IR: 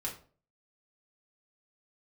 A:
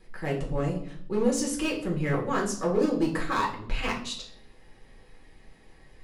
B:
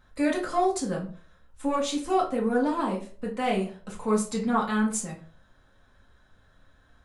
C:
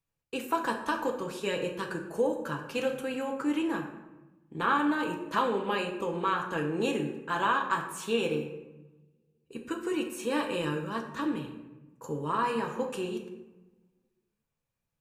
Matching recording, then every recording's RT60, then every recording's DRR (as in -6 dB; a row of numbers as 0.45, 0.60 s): B; 0.60, 0.45, 1.1 s; -3.5, -3.5, 1.5 dB